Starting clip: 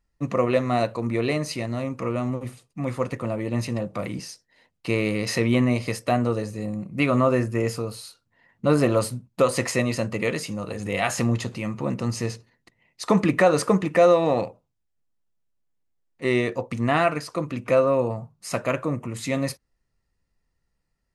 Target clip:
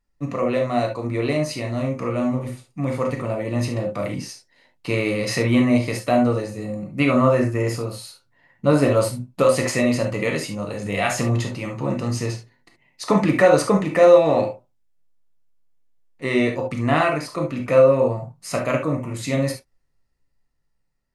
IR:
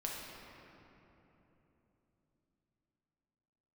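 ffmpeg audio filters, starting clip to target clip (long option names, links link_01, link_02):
-filter_complex "[0:a]dynaudnorm=framelen=130:gausssize=21:maxgain=3.5dB[link_01];[1:a]atrim=start_sample=2205,atrim=end_sample=3087,asetrate=38808,aresample=44100[link_02];[link_01][link_02]afir=irnorm=-1:irlink=0"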